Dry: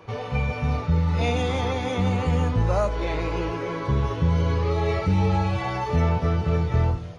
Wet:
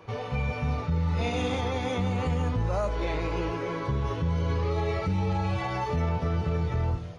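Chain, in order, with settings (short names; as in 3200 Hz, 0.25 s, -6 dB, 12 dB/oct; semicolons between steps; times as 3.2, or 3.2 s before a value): limiter -17 dBFS, peak gain reduction 5.5 dB; 1.14–1.58 flutter echo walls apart 11 m, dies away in 0.87 s; gain -2.5 dB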